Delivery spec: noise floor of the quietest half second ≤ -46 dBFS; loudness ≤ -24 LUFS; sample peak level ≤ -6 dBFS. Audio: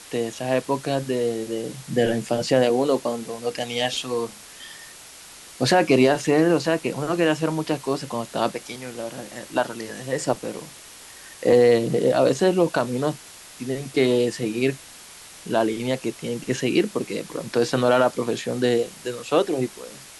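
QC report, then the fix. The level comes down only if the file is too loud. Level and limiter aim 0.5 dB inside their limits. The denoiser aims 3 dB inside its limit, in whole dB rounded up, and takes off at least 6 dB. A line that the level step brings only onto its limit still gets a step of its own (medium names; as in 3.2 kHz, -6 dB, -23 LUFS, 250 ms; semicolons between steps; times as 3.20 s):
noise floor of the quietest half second -44 dBFS: fail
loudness -23.0 LUFS: fail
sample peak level -5.5 dBFS: fail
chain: noise reduction 6 dB, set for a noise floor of -44 dBFS; trim -1.5 dB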